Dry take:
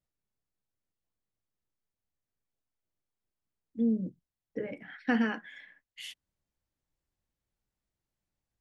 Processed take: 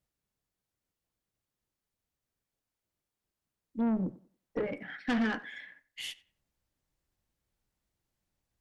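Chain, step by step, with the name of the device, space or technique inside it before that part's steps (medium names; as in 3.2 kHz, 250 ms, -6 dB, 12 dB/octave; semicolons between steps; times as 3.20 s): 3.87–4.65 s: peaking EQ 890 Hz +4.5 dB 2.3 oct; rockabilly slapback (valve stage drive 30 dB, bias 0.25; tape echo 91 ms, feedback 29%, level -17 dB, low-pass 2.3 kHz); trim +4.5 dB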